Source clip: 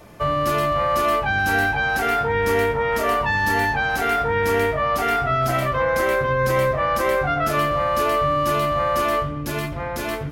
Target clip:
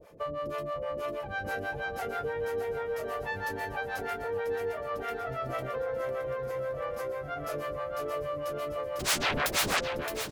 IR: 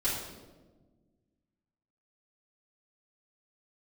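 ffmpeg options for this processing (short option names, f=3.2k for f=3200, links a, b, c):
-filter_complex "[0:a]equalizer=f=500:t=o:w=0.59:g=14,acompressor=threshold=-18dB:ratio=4,asplit=3[a][b][c];[a]afade=t=out:st=8.99:d=0.02[d];[b]aeval=exprs='0.251*sin(PI/2*10*val(0)/0.251)':c=same,afade=t=in:st=8.99:d=0.02,afade=t=out:st=9.79:d=0.02[e];[c]afade=t=in:st=9.79:d=0.02[f];[d][e][f]amix=inputs=3:normalize=0,acrossover=split=530[g][h];[g]aeval=exprs='val(0)*(1-1/2+1/2*cos(2*PI*6.2*n/s))':c=same[i];[h]aeval=exprs='val(0)*(1-1/2-1/2*cos(2*PI*6.2*n/s))':c=same[j];[i][j]amix=inputs=2:normalize=0,aecho=1:1:619|1238|1857|2476|3095|3714|4333:0.355|0.199|0.111|0.0623|0.0349|0.0195|0.0109,volume=-9dB"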